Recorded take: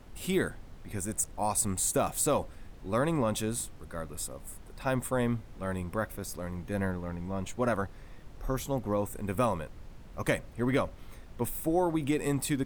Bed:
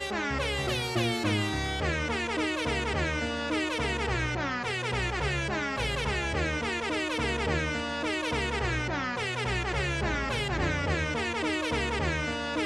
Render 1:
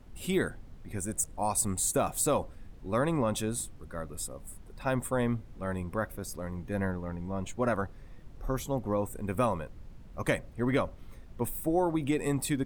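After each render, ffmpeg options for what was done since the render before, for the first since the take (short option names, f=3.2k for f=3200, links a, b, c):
-af "afftdn=nr=6:nf=-49"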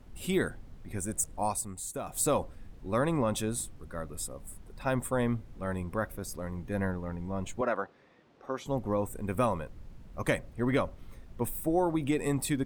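-filter_complex "[0:a]asettb=1/sr,asplit=3[a][b][c];[a]atrim=end=7.614[d];[b]atrim=start=7.61:end=8.66,asetpts=PTS-STARTPTS,afade=t=in:d=0.004:c=qsin,afade=t=out:st=1.046:d=0.004:c=qsin,highpass=320,lowpass=4.5k[e];[c]atrim=start=8.656[f];[d][e]acrossfade=d=0.004:c1=hsin:c2=qsin[g];[g][f]acrossfade=d=0.004:c1=qsin:c2=hsin,asplit=3[h][i][j];[h]atrim=end=1.64,asetpts=PTS-STARTPTS,afade=t=out:st=1.47:d=0.17:silence=0.334965[k];[i]atrim=start=1.64:end=2.05,asetpts=PTS-STARTPTS,volume=-9.5dB[l];[j]atrim=start=2.05,asetpts=PTS-STARTPTS,afade=t=in:d=0.17:silence=0.334965[m];[k][l][m]concat=n=3:v=0:a=1"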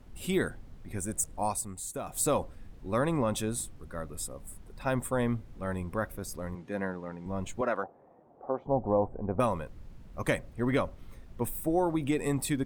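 -filter_complex "[0:a]asettb=1/sr,asplit=3[a][b][c];[a]atrim=end=6.554[d];[b]atrim=start=6.55:end=7.26,asetpts=PTS-STARTPTS,afade=t=in:d=0.004:c=qsin,afade=t=out:st=0.706:d=0.004:c=qsin,highpass=200,lowpass=7.8k[e];[c]atrim=start=7.256[f];[d][e]acrossfade=d=0.004:c1=hsin:c2=qsin[g];[g][f]acrossfade=d=0.004:c1=qsin:c2=hsin,asettb=1/sr,asplit=3[h][i][j];[h]atrim=end=7.834[k];[i]atrim=start=7.83:end=9.4,asetpts=PTS-STARTPTS,afade=t=in:d=0.004:c=qsin,afade=t=out:st=1.566:d=0.004:c=qsin,lowpass=f=760:t=q:w=3[l];[j]atrim=start=9.396[m];[k][l]acrossfade=d=0.004:c1=hsin:c2=qsin[n];[n][m]acrossfade=d=0.004:c1=qsin:c2=hsin"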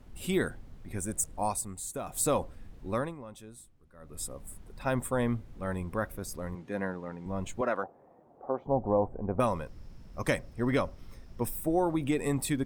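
-filter_complex "[0:a]asettb=1/sr,asplit=3[a][b][c];[a]atrim=end=9.464[d];[b]atrim=start=9.46:end=11.55,asetpts=PTS-STARTPTS,afade=t=in:d=0.004:c=qsin,afade=t=out:st=2.086:d=0.004:c=qsin,equalizer=f=5.3k:w=5.7:g=12.5[e];[c]atrim=start=11.546[f];[d][e]acrossfade=d=0.004:c1=hsin:c2=qsin[g];[g][f]acrossfade=d=0.004:c1=qsin:c2=hsin,asplit=3[h][i][j];[h]atrim=end=3.15,asetpts=PTS-STARTPTS,afade=t=out:st=2.9:d=0.25:silence=0.149624[k];[i]atrim=start=3.15:end=3.99,asetpts=PTS-STARTPTS,volume=-16.5dB[l];[j]atrim=start=3.99,asetpts=PTS-STARTPTS,afade=t=in:d=0.25:silence=0.149624[m];[k][l][m]concat=n=3:v=0:a=1"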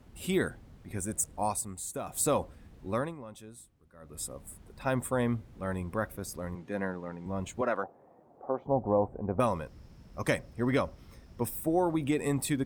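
-af "highpass=47"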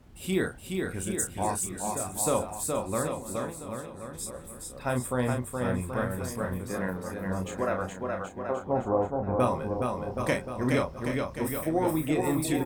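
-filter_complex "[0:a]asplit=2[a][b];[b]adelay=32,volume=-6dB[c];[a][c]amix=inputs=2:normalize=0,aecho=1:1:420|777|1080|1338|1558:0.631|0.398|0.251|0.158|0.1"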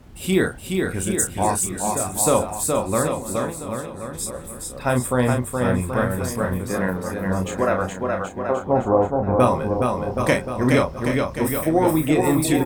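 -af "volume=8.5dB"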